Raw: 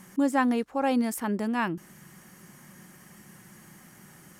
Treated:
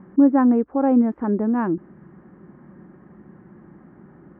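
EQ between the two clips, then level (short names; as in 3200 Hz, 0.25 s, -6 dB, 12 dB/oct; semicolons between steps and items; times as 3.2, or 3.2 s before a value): LPF 1500 Hz 24 dB/oct; bell 60 Hz +12 dB 0.74 oct; bell 320 Hz +11.5 dB 1.5 oct; 0.0 dB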